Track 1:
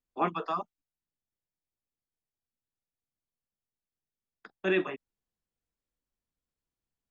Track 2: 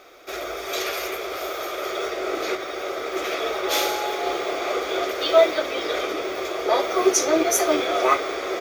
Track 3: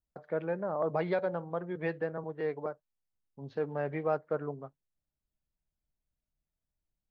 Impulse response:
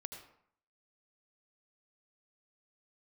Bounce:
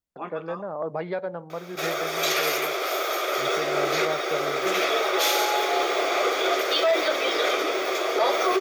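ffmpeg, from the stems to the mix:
-filter_complex "[0:a]volume=-9dB,asplit=2[a][b];[b]volume=-5.5dB[c];[1:a]aeval=exprs='0.562*sin(PI/2*1.58*val(0)/0.562)':c=same,highpass=f=420:p=1,adelay=1500,volume=-3.5dB[d];[2:a]volume=1dB,asplit=2[e][f];[f]volume=-23.5dB[g];[3:a]atrim=start_sample=2205[h];[c][g]amix=inputs=2:normalize=0[i];[i][h]afir=irnorm=-1:irlink=0[j];[a][d][e][j]amix=inputs=4:normalize=0,lowshelf=f=80:g=-11.5,alimiter=limit=-13dB:level=0:latency=1:release=43"

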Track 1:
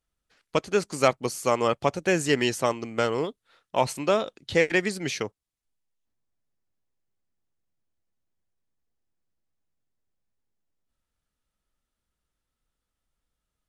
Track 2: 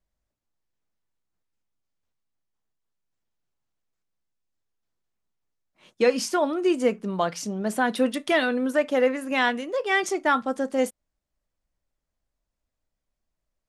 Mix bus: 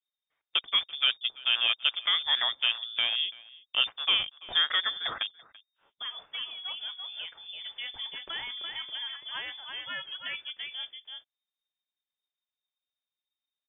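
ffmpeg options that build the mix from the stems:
-filter_complex "[0:a]afwtdn=0.01,deesser=0.95,volume=-3dB,asplit=2[a][b];[b]volume=-22dB[c];[1:a]alimiter=limit=-15dB:level=0:latency=1:release=37,volume=-15dB,asplit=2[d][e];[e]volume=-5dB[f];[c][f]amix=inputs=2:normalize=0,aecho=0:1:336:1[g];[a][d][g]amix=inputs=3:normalize=0,highshelf=f=2.6k:g=10,lowpass=f=3.1k:t=q:w=0.5098,lowpass=f=3.1k:t=q:w=0.6013,lowpass=f=3.1k:t=q:w=0.9,lowpass=f=3.1k:t=q:w=2.563,afreqshift=-3700"

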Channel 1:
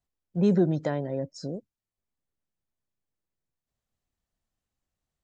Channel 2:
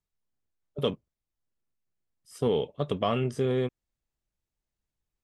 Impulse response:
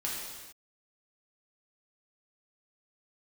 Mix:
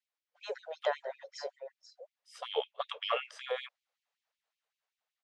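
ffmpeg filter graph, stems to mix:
-filter_complex "[0:a]lowshelf=f=150:g=-6,volume=1dB,asplit=3[a][b][c];[b]volume=-11.5dB[d];[1:a]volume=-0.5dB[e];[c]apad=whole_len=230853[f];[e][f]sidechaincompress=threshold=-37dB:ratio=16:attack=7.2:release=162[g];[d]aecho=0:1:486:1[h];[a][g][h]amix=inputs=3:normalize=0,lowpass=4.3k,dynaudnorm=f=250:g=9:m=3dB,afftfilt=real='re*gte(b*sr/1024,410*pow(2200/410,0.5+0.5*sin(2*PI*5.3*pts/sr)))':imag='im*gte(b*sr/1024,410*pow(2200/410,0.5+0.5*sin(2*PI*5.3*pts/sr)))':win_size=1024:overlap=0.75"

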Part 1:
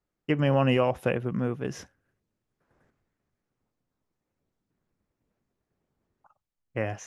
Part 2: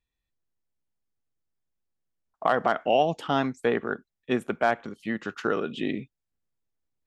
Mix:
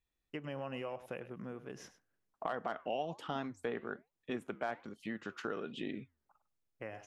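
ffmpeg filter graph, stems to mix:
-filter_complex "[0:a]highpass=f=270:p=1,adelay=50,volume=-9.5dB,asplit=2[a][b];[b]volume=-15.5dB[c];[1:a]flanger=delay=1.7:depth=6:regen=-89:speed=1.2:shape=triangular,volume=1dB[d];[c]aecho=0:1:101:1[e];[a][d][e]amix=inputs=3:normalize=0,acompressor=threshold=-43dB:ratio=2"

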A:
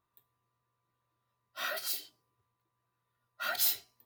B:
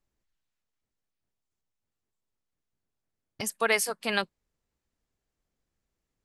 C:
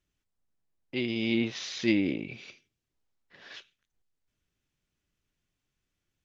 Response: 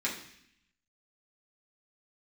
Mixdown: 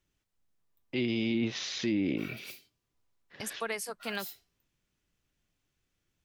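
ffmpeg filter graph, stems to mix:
-filter_complex "[0:a]adelay=600,volume=-15dB[a];[1:a]volume=-6dB[b];[2:a]volume=2dB[c];[b][c]amix=inputs=2:normalize=0,acrossover=split=360[d][e];[e]acompressor=threshold=-32dB:ratio=6[f];[d][f]amix=inputs=2:normalize=0,alimiter=limit=-21.5dB:level=0:latency=1:release=21,volume=0dB[g];[a][g]amix=inputs=2:normalize=0"

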